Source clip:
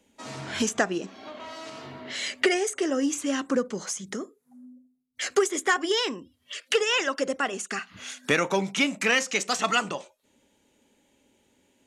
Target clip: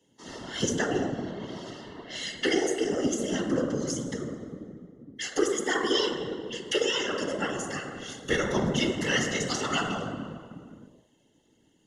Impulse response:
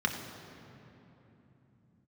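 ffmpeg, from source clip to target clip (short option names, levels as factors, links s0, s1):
-filter_complex "[0:a]asubboost=boost=5:cutoff=120[s0];[1:a]atrim=start_sample=2205,asetrate=79380,aresample=44100[s1];[s0][s1]afir=irnorm=-1:irlink=0,afftfilt=real='hypot(re,im)*cos(2*PI*random(0))':imag='hypot(re,im)*sin(2*PI*random(1))':win_size=512:overlap=0.75,asuperstop=centerf=2400:order=8:qfactor=4.6"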